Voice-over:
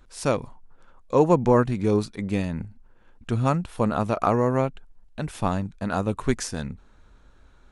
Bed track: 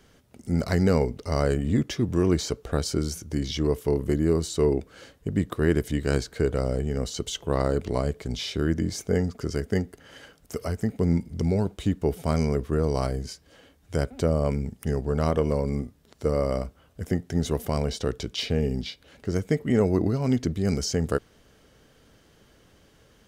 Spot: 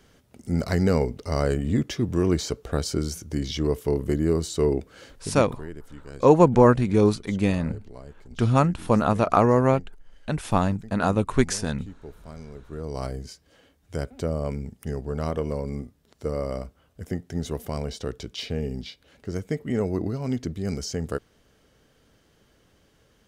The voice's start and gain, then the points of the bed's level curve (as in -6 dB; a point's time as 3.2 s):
5.10 s, +3.0 dB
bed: 5.15 s 0 dB
5.72 s -17.5 dB
12.53 s -17.5 dB
13.04 s -4 dB